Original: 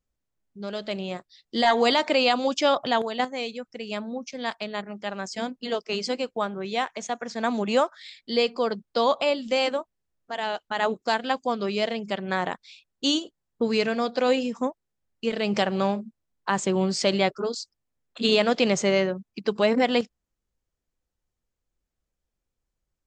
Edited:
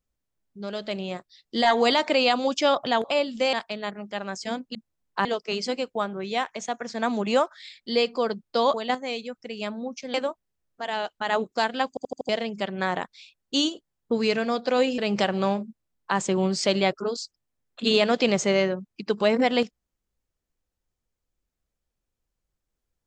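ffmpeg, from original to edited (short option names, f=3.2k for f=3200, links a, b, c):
-filter_complex "[0:a]asplit=13[a][b][c][d][e][f][g][h][i][j][k][l][m];[a]atrim=end=3.042[n];[b]atrim=start=9.148:end=9.642[o];[c]atrim=start=4.438:end=5.662[p];[d]atrim=start=16.048:end=16.552[q];[e]atrim=start=5.658:end=9.152[r];[f]atrim=start=3.038:end=4.442[s];[g]atrim=start=9.638:end=11.472[t];[h]atrim=start=11.388:end=11.472[u];[i]atrim=start=11.388:end=11.472[v];[j]atrim=start=11.388:end=11.472[w];[k]atrim=start=11.388:end=11.472[x];[l]atrim=start=11.788:end=14.482[y];[m]atrim=start=15.358[z];[n][o]acrossfade=d=0.004:c1=hsin:c2=hsin[aa];[aa][p]acrossfade=d=0.004:c1=hsin:c2=hsin[ab];[ab][q]acrossfade=d=0.004:c1=hsin:c2=hsin[ac];[ac][r]acrossfade=d=0.004:c1=hsin:c2=hsin[ad];[ad][s]acrossfade=d=0.004:c1=hsin:c2=hsin[ae];[ae][t]acrossfade=d=0.004:c1=hsin:c2=hsin[af];[af][u]acrossfade=d=0.004:c1=hsin:c2=hsin[ag];[ag][v]acrossfade=d=0.004:c1=hsin:c2=hsin[ah];[ah][w]acrossfade=d=0.004:c1=hsin:c2=hsin[ai];[ai][x]acrossfade=d=0.004:c1=hsin:c2=hsin[aj];[aj][y]acrossfade=d=0.004:c1=hsin:c2=hsin[ak];[ak][z]acrossfade=d=0.004:c1=hsin:c2=hsin"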